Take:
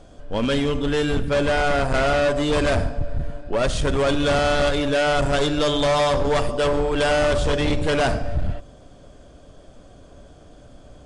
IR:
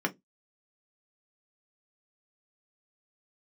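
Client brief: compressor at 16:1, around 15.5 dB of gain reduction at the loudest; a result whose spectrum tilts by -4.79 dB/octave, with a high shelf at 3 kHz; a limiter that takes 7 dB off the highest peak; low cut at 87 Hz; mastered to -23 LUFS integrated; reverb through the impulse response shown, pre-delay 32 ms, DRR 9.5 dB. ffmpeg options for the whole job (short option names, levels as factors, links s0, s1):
-filter_complex "[0:a]highpass=87,highshelf=f=3000:g=-6,acompressor=threshold=0.0224:ratio=16,alimiter=level_in=2.11:limit=0.0631:level=0:latency=1,volume=0.473,asplit=2[s0][s1];[1:a]atrim=start_sample=2205,adelay=32[s2];[s1][s2]afir=irnorm=-1:irlink=0,volume=0.133[s3];[s0][s3]amix=inputs=2:normalize=0,volume=5.31"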